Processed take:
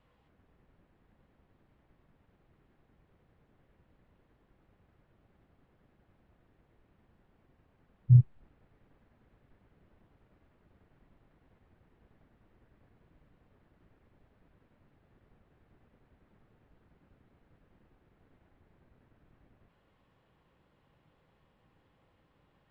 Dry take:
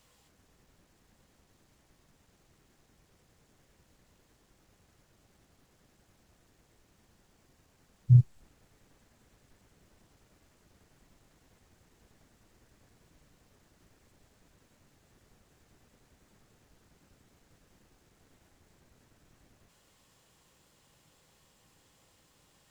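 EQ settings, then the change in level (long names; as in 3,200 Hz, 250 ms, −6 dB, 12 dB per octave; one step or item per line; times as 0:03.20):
high-frequency loss of the air 500 metres
0.0 dB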